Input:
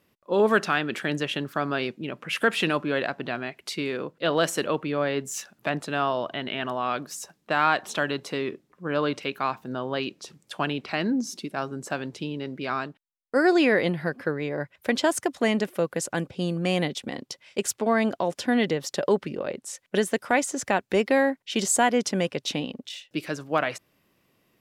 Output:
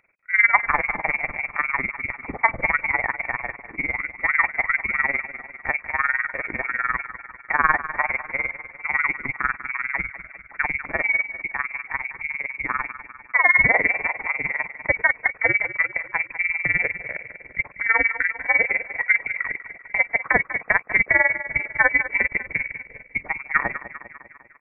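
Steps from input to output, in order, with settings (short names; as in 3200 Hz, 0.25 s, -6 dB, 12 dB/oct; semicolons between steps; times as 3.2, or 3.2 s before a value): inverted band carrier 2500 Hz; feedback echo 0.193 s, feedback 57%, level -13 dB; AM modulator 20 Hz, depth 75%; gain +6.5 dB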